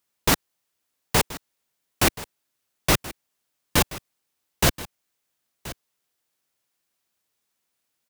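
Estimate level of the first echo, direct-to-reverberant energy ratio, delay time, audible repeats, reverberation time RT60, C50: −17.0 dB, no reverb audible, 1,028 ms, 1, no reverb audible, no reverb audible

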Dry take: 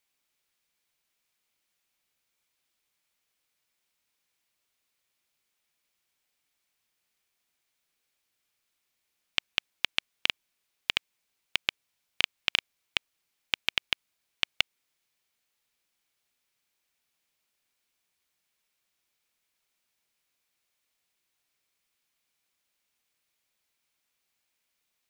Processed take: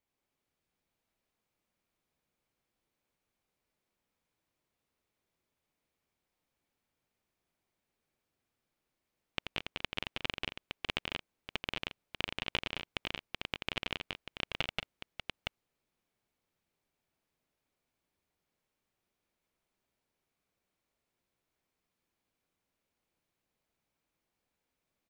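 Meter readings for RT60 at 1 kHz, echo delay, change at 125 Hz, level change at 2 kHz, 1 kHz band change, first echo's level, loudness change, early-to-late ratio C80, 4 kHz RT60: no reverb audible, 84 ms, +7.0 dB, −6.5 dB, −0.5 dB, −6.5 dB, −8.5 dB, no reverb audible, no reverb audible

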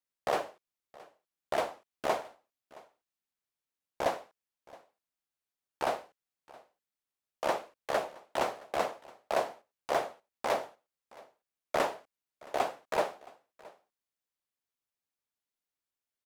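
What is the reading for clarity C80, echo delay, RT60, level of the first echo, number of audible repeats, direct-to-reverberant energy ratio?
no reverb audible, 670 ms, no reverb audible, −22.5 dB, 1, no reverb audible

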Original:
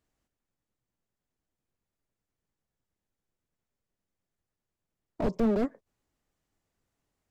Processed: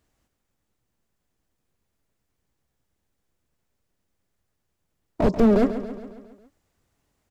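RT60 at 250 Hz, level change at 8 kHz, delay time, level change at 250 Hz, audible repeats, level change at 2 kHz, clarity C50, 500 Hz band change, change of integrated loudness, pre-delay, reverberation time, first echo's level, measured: no reverb audible, can't be measured, 137 ms, +9.0 dB, 5, +9.0 dB, no reverb audible, +9.0 dB, +8.5 dB, no reverb audible, no reverb audible, −11.5 dB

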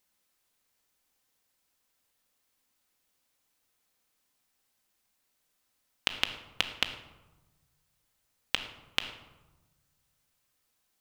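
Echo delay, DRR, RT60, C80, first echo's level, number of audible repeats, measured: no echo audible, 6.0 dB, 1.1 s, 11.5 dB, no echo audible, no echo audible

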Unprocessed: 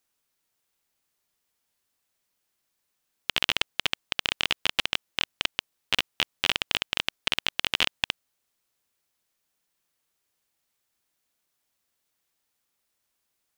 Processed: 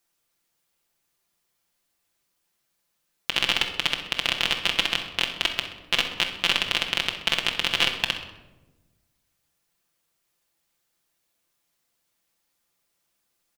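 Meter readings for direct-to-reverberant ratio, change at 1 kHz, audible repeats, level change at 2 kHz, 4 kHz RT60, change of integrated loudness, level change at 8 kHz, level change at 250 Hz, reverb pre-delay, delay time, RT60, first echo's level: 1.0 dB, +3.5 dB, 2, +3.5 dB, 0.60 s, +3.5 dB, +3.0 dB, +4.5 dB, 6 ms, 64 ms, 1.1 s, −13.0 dB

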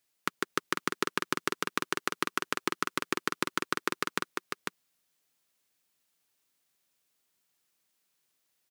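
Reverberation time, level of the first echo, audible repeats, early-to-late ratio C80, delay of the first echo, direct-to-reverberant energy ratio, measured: no reverb audible, −4.5 dB, 1, no reverb audible, 498 ms, no reverb audible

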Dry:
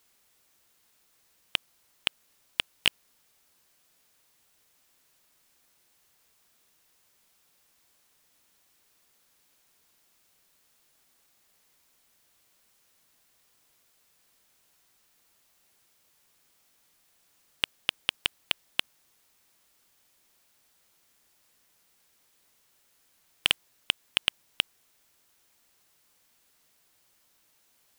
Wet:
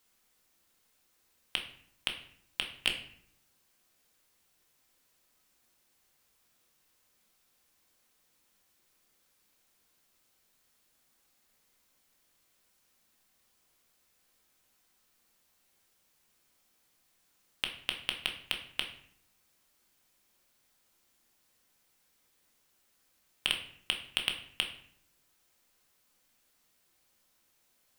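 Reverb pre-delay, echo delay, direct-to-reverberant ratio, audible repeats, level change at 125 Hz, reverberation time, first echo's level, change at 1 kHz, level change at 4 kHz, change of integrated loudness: 4 ms, no echo audible, 2.5 dB, no echo audible, −3.0 dB, 0.60 s, no echo audible, −4.0 dB, −4.5 dB, −5.0 dB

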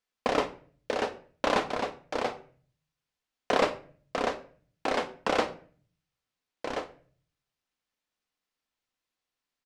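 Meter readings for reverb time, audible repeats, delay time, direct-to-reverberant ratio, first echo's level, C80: 0.45 s, 1, 83 ms, 9.0 dB, −21.0 dB, 18.0 dB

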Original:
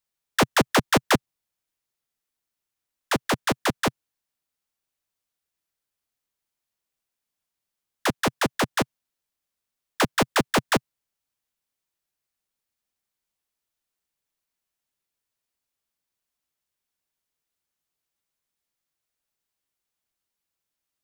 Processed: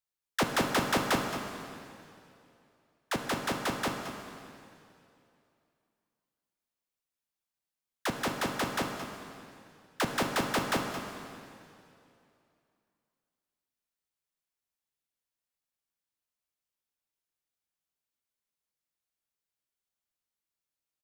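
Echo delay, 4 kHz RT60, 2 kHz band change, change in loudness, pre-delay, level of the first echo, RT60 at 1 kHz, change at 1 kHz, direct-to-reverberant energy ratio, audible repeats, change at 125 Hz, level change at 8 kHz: 221 ms, 2.5 s, −7.0 dB, −8.0 dB, 5 ms, −11.5 dB, 2.6 s, −6.5 dB, 3.0 dB, 1, −7.5 dB, −7.0 dB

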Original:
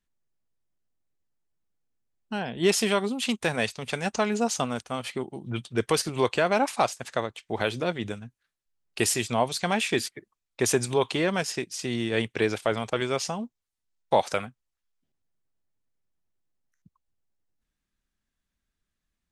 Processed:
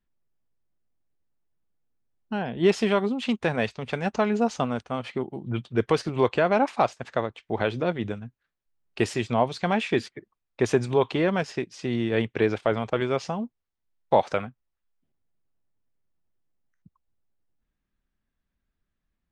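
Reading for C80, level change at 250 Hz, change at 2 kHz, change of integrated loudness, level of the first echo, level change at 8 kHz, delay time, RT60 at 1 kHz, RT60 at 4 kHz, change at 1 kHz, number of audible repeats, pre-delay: no reverb audible, +3.0 dB, −1.0 dB, +1.0 dB, no echo audible, −13.5 dB, no echo audible, no reverb audible, no reverb audible, +1.5 dB, no echo audible, no reverb audible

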